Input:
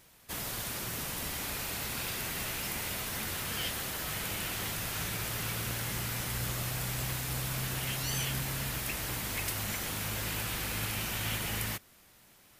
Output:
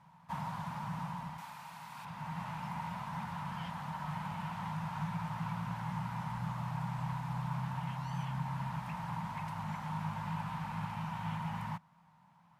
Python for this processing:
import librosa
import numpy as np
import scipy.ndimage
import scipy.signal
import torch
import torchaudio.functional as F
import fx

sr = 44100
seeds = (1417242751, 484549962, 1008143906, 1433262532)

y = fx.tilt_eq(x, sr, slope=3.0, at=(1.38, 2.05))
y = fx.rider(y, sr, range_db=5, speed_s=0.5)
y = fx.double_bandpass(y, sr, hz=390.0, octaves=2.5)
y = y * librosa.db_to_amplitude(9.5)